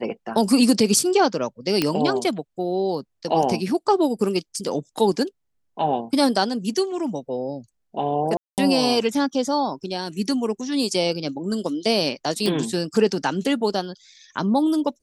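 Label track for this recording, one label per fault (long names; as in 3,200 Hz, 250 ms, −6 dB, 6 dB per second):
1.820000	1.820000	click −5 dBFS
8.370000	8.580000	drop-out 208 ms
12.460000	12.460000	click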